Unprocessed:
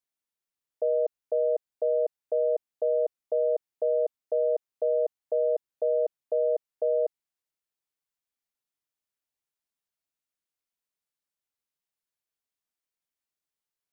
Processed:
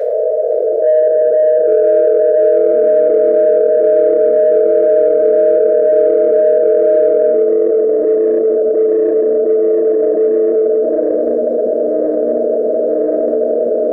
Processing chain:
compressor on every frequency bin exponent 0.2
delay with pitch and tempo change per echo 511 ms, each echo −6 semitones, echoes 2
low-shelf EQ 420 Hz −4.5 dB
convolution reverb RT60 2.1 s, pre-delay 6 ms, DRR −10 dB
in parallel at −7 dB: soft clipping −20.5 dBFS, distortion −8 dB
on the sum: drawn EQ curve 190 Hz 0 dB, 290 Hz −10 dB, 420 Hz +11 dB, 630 Hz +13 dB, 920 Hz −10 dB, 1,600 Hz +11 dB, 2,600 Hz −1 dB
envelope flattener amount 70%
level −9 dB

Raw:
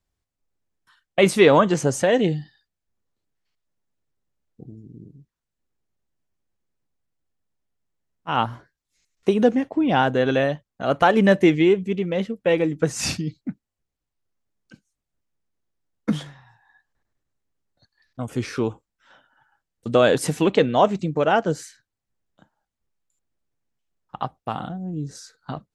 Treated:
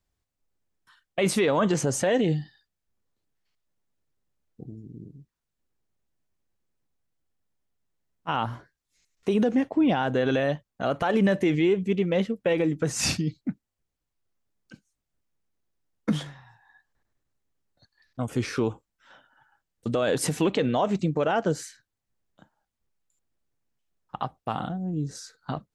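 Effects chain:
brickwall limiter −14.5 dBFS, peak gain reduction 11.5 dB

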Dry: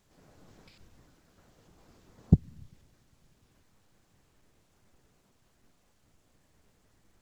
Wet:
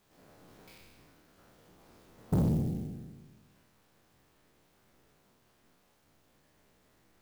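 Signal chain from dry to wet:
peak hold with a decay on every bin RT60 1.43 s
low-shelf EQ 140 Hz −9 dB
soft clipping −23 dBFS, distortion −8 dB
converter with an unsteady clock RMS 0.031 ms

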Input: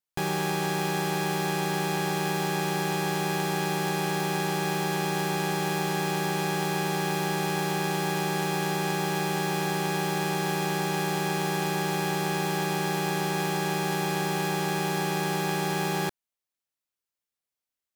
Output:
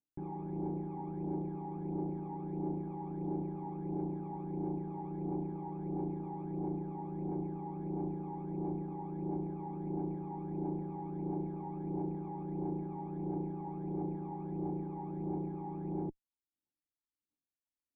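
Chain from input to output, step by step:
phase shifter 1.5 Hz, delay 1.1 ms, feedback 76%
tube saturation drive 29 dB, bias 0.45
formant resonators in series u
level +4.5 dB

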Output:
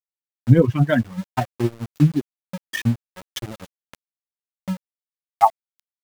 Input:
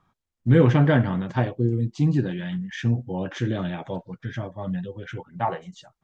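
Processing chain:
spectral dynamics exaggerated over time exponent 3
high-pass filter 73 Hz 12 dB per octave
centre clipping without the shift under −40.5 dBFS
transient designer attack +7 dB, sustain −6 dB
speech leveller within 3 dB 0.5 s
level +6 dB

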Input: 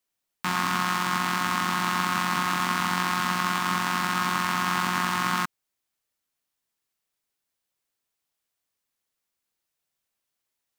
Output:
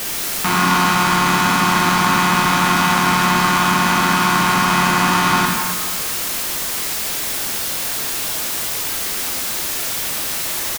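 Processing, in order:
converter with a step at zero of −23.5 dBFS
pitch-shifted copies added −4 semitones −15 dB
dense smooth reverb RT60 1.6 s, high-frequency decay 0.85×, DRR 0 dB
level +4.5 dB

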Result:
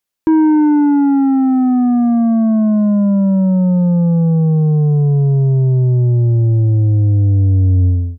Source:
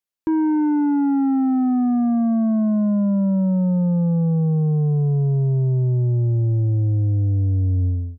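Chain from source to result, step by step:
speech leveller 2 s
level +6.5 dB

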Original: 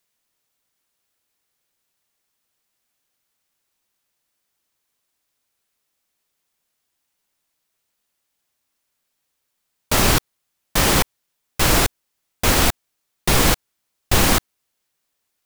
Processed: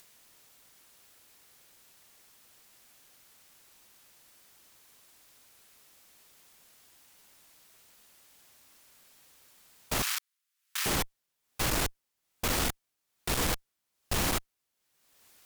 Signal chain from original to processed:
upward compression, threshold −33 dBFS
tube saturation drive 22 dB, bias 0.65
0:10.02–0:10.86: inverse Chebyshev high-pass filter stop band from 210 Hz, stop band 80 dB
level −4 dB

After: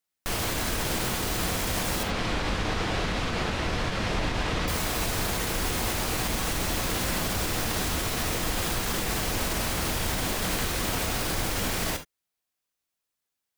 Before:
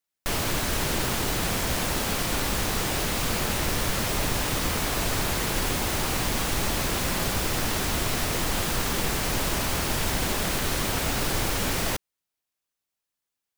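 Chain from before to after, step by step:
0:02.03–0:04.68: low-pass filter 4,000 Hz 12 dB per octave
brickwall limiter −19 dBFS, peak gain reduction 6 dB
reverb whose tail is shaped and stops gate 90 ms flat, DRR 6.5 dB

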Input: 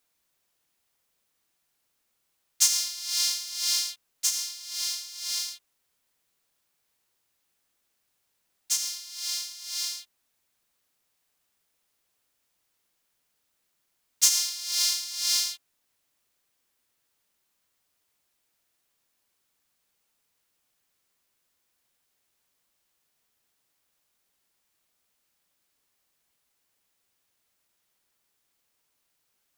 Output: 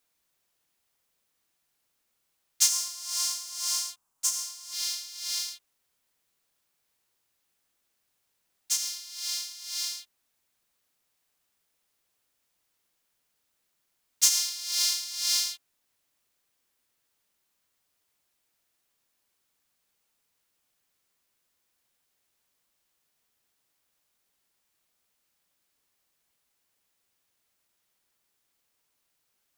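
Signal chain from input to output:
0:02.69–0:04.73: graphic EQ with 10 bands 500 Hz −7 dB, 1,000 Hz +11 dB, 2,000 Hz −8 dB, 4,000 Hz −6 dB, 8,000 Hz +4 dB, 16,000 Hz −3 dB
level −1 dB

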